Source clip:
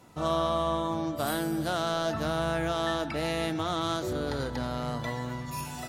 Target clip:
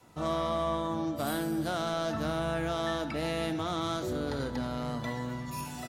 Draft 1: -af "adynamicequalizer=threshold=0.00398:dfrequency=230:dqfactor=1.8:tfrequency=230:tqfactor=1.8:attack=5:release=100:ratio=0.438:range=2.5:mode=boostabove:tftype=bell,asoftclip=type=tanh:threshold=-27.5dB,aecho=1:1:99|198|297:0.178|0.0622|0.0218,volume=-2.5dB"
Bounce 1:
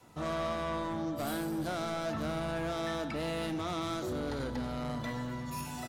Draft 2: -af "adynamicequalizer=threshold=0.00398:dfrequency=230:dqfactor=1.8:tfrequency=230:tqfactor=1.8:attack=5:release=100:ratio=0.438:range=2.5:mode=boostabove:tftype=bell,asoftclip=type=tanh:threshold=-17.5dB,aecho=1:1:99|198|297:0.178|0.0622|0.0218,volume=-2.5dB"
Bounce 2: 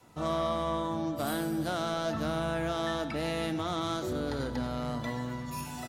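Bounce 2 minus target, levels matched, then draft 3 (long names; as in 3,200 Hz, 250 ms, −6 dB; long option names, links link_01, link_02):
echo 28 ms late
-af "adynamicequalizer=threshold=0.00398:dfrequency=230:dqfactor=1.8:tfrequency=230:tqfactor=1.8:attack=5:release=100:ratio=0.438:range=2.5:mode=boostabove:tftype=bell,asoftclip=type=tanh:threshold=-17.5dB,aecho=1:1:71|142|213:0.178|0.0622|0.0218,volume=-2.5dB"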